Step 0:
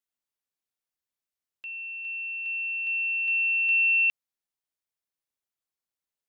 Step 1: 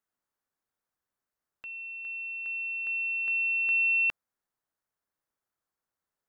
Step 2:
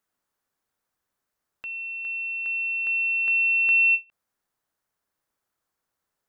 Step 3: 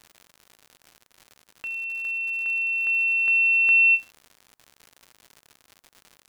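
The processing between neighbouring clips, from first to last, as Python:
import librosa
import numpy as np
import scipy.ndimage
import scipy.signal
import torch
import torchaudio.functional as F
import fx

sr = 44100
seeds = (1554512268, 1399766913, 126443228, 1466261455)

y1 = fx.high_shelf_res(x, sr, hz=2000.0, db=-8.0, q=1.5)
y1 = y1 * 10.0 ** (6.5 / 20.0)
y2 = fx.end_taper(y1, sr, db_per_s=370.0)
y2 = y2 * 10.0 ** (6.5 / 20.0)
y3 = fx.dmg_crackle(y2, sr, seeds[0], per_s=140.0, level_db=-38.0)
y3 = y3 * 10.0 ** (2.0 / 20.0)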